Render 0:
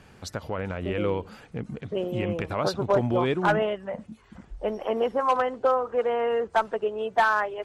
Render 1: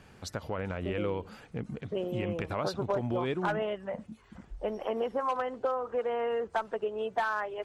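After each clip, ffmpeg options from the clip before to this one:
-af "acompressor=threshold=0.0562:ratio=3,volume=0.708"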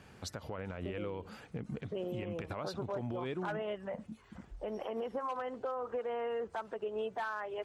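-af "highpass=47,alimiter=level_in=1.68:limit=0.0631:level=0:latency=1:release=116,volume=0.596,volume=0.891"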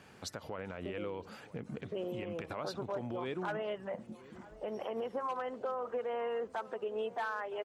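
-filter_complex "[0:a]highpass=f=190:p=1,asplit=2[s0][s1];[s1]adelay=970,lowpass=f=1100:p=1,volume=0.141,asplit=2[s2][s3];[s3]adelay=970,lowpass=f=1100:p=1,volume=0.54,asplit=2[s4][s5];[s5]adelay=970,lowpass=f=1100:p=1,volume=0.54,asplit=2[s6][s7];[s7]adelay=970,lowpass=f=1100:p=1,volume=0.54,asplit=2[s8][s9];[s9]adelay=970,lowpass=f=1100:p=1,volume=0.54[s10];[s0][s2][s4][s6][s8][s10]amix=inputs=6:normalize=0,volume=1.12"

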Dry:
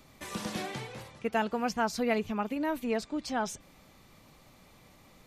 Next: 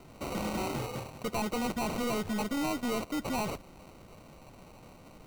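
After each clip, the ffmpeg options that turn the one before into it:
-af "acrusher=samples=26:mix=1:aa=0.000001,volume=56.2,asoftclip=hard,volume=0.0178,volume=1.88"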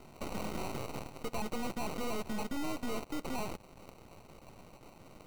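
-af "acompressor=threshold=0.0112:ratio=4,aeval=exprs='0.0282*(cos(1*acos(clip(val(0)/0.0282,-1,1)))-cos(1*PI/2))+0.00891*(cos(6*acos(clip(val(0)/0.0282,-1,1)))-cos(6*PI/2))+0.00794*(cos(7*acos(clip(val(0)/0.0282,-1,1)))-cos(7*PI/2))':c=same,volume=0.794"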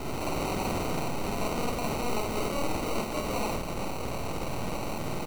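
-filter_complex "[0:a]aeval=exprs='0.0335*sin(PI/2*7.94*val(0)/0.0335)':c=same,asplit=2[s0][s1];[s1]aecho=0:1:49.56|93.29:0.891|0.282[s2];[s0][s2]amix=inputs=2:normalize=0"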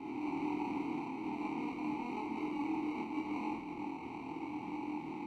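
-filter_complex "[0:a]flanger=delay=22.5:depth=4.1:speed=0.84,asplit=3[s0][s1][s2];[s0]bandpass=f=300:t=q:w=8,volume=1[s3];[s1]bandpass=f=870:t=q:w=8,volume=0.501[s4];[s2]bandpass=f=2240:t=q:w=8,volume=0.355[s5];[s3][s4][s5]amix=inputs=3:normalize=0,volume=2.11"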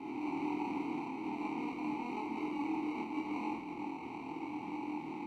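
-af "lowshelf=f=110:g=-6.5,volume=1.12"

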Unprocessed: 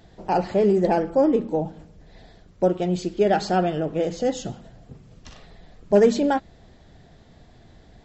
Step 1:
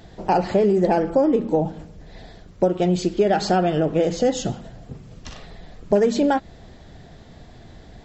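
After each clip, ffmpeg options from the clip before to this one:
-af "acompressor=threshold=0.0891:ratio=6,volume=2.11"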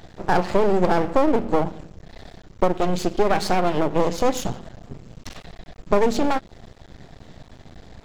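-af "aeval=exprs='max(val(0),0)':c=same,volume=1.5"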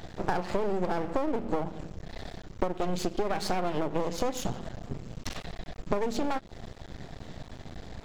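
-af "acompressor=threshold=0.0501:ratio=5,volume=1.12"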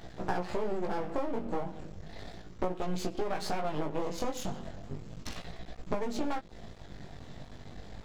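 -af "flanger=delay=16:depth=5.4:speed=0.34,volume=0.891"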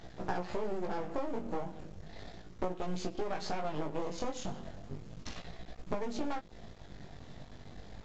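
-af "volume=0.708" -ar 16000 -c:a pcm_mulaw

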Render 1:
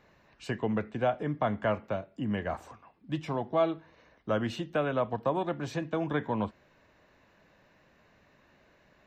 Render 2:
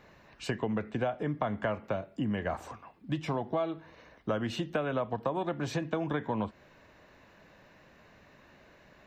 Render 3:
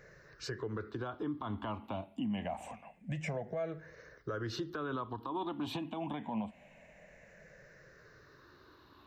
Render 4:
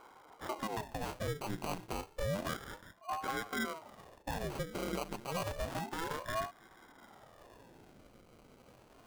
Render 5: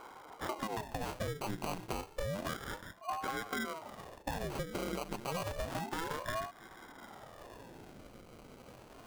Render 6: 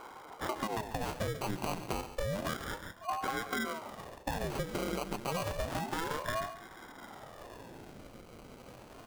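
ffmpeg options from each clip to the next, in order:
-af "acompressor=threshold=0.0224:ratio=6,volume=1.78"
-af "afftfilt=real='re*pow(10,16/40*sin(2*PI*(0.55*log(max(b,1)*sr/1024/100)/log(2)-(-0.26)*(pts-256)/sr)))':imag='im*pow(10,16/40*sin(2*PI*(0.55*log(max(b,1)*sr/1024/100)/log(2)-(-0.26)*(pts-256)/sr)))':win_size=1024:overlap=0.75,alimiter=level_in=1.12:limit=0.0631:level=0:latency=1:release=93,volume=0.891,volume=0.631"
-af "acrusher=samples=25:mix=1:aa=0.000001,aeval=exprs='val(0)*sin(2*PI*510*n/s+510*0.85/0.3*sin(2*PI*0.3*n/s))':c=same,volume=1.41"
-af "acompressor=threshold=0.01:ratio=6,volume=2"
-af "aecho=1:1:139:0.224,volume=1.33"

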